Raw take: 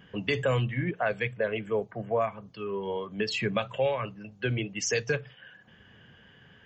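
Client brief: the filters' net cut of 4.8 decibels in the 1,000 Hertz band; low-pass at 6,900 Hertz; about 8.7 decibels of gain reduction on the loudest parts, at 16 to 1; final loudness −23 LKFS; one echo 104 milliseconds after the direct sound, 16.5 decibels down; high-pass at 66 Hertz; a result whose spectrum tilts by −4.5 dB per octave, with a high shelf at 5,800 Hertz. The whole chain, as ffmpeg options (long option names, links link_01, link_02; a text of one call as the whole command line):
ffmpeg -i in.wav -af "highpass=66,lowpass=6900,equalizer=frequency=1000:width_type=o:gain=-7,highshelf=frequency=5800:gain=4,acompressor=threshold=-32dB:ratio=16,aecho=1:1:104:0.15,volume=14.5dB" out.wav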